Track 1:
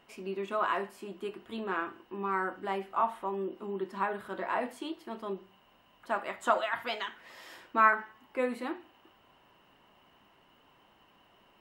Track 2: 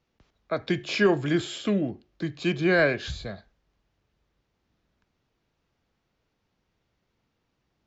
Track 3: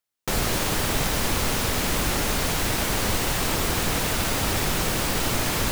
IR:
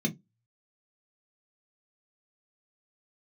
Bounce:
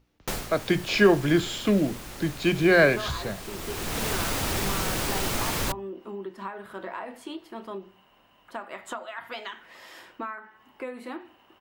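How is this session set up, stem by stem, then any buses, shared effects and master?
+3.0 dB, 2.45 s, no send, compressor 16:1, threshold -35 dBFS, peak gain reduction 19 dB
+3.0 dB, 0.00 s, no send, dry
-3.5 dB, 0.00 s, no send, hum 60 Hz, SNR 35 dB; auto duck -13 dB, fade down 0.20 s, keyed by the second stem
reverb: off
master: notches 60/120/180/240 Hz

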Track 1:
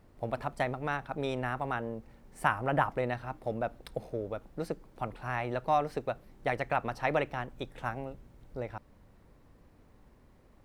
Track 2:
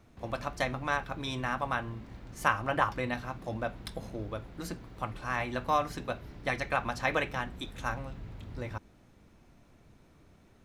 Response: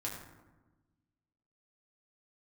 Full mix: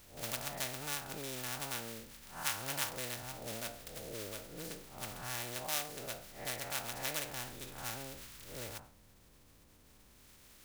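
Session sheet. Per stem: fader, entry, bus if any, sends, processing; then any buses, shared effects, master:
-3.5 dB, 0.00 s, no send, time blur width 0.163 s; compressor, threshold -38 dBFS, peak gain reduction 10.5 dB
+0.5 dB, 0.00 s, no send, spectral contrast lowered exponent 0.16; HPF 1100 Hz 12 dB/oct; auto duck -9 dB, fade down 0.70 s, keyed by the first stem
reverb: off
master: dry

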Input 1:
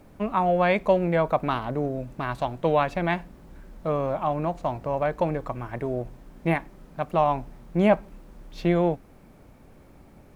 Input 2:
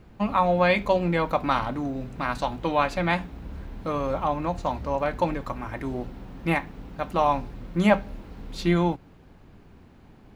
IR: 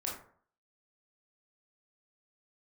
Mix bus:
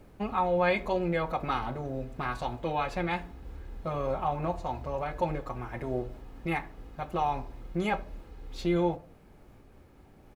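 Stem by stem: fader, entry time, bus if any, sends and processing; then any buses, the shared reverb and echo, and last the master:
-5.5 dB, 0.00 s, send -8 dB, limiter -19 dBFS, peak gain reduction 10 dB; noise-modulated level, depth 55%
-10.0 dB, 2.3 ms, no send, comb 2.4 ms, depth 75%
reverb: on, RT60 0.55 s, pre-delay 18 ms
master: dry

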